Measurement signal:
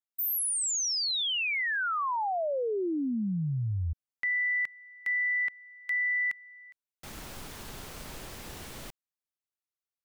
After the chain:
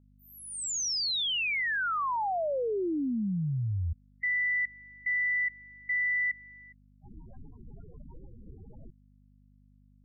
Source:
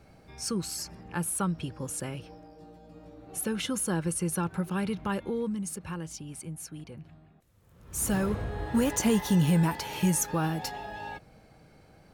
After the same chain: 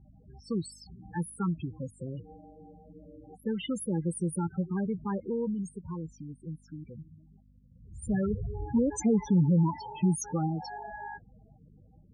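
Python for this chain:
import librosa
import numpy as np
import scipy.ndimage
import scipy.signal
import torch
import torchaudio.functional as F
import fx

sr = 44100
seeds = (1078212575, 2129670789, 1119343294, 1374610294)

y = fx.spec_topn(x, sr, count=8)
y = fx.dmg_buzz(y, sr, base_hz=50.0, harmonics=5, level_db=-61.0, tilt_db=-4, odd_only=False)
y = fx.env_lowpass(y, sr, base_hz=1800.0, full_db=-27.0)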